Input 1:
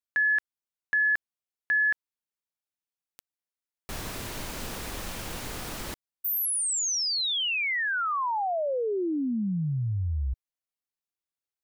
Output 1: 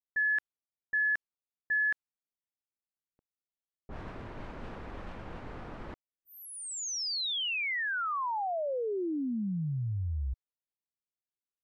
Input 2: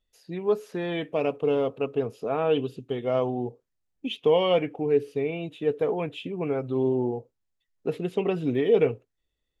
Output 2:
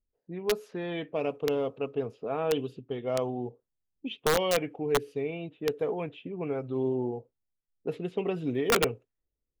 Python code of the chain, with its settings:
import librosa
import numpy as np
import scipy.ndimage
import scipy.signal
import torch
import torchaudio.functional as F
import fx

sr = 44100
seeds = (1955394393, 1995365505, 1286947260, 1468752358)

y = fx.env_lowpass(x, sr, base_hz=440.0, full_db=-23.0)
y = (np.mod(10.0 ** (13.0 / 20.0) * y + 1.0, 2.0) - 1.0) / 10.0 ** (13.0 / 20.0)
y = y * 10.0 ** (-4.5 / 20.0)